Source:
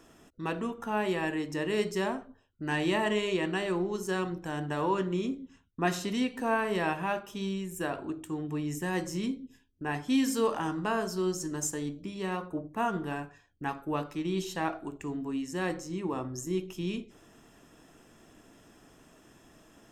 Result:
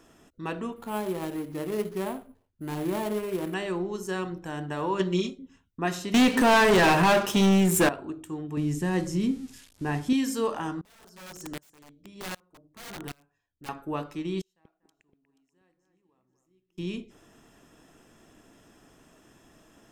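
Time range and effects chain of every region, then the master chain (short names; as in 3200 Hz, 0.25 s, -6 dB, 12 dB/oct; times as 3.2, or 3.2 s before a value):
0.76–3.54 median filter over 25 samples + sample-rate reducer 11000 Hz
4.99–5.39 bell 4700 Hz +12.5 dB 1.4 oct + comb 5.3 ms, depth 99% + upward expander, over -39 dBFS
6.14–7.89 HPF 87 Hz + sample leveller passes 5
8.57–10.13 switching spikes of -36 dBFS + Bessel low-pass 8700 Hz, order 8 + low shelf 340 Hz +9.5 dB
10.81–13.69 wrapped overs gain 28 dB + dB-ramp tremolo swelling 1.3 Hz, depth 29 dB
14.41–16.78 flipped gate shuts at -33 dBFS, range -38 dB + echo with dull and thin repeats by turns 0.24 s, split 2300 Hz, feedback 57%, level -7 dB
whole clip: dry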